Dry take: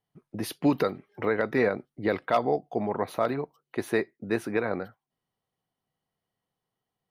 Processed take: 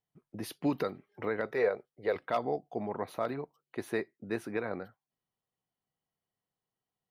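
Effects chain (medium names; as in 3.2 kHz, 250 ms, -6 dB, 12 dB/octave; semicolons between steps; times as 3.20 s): 1.46–2.16 s: resonant low shelf 360 Hz -6.5 dB, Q 3; trim -7 dB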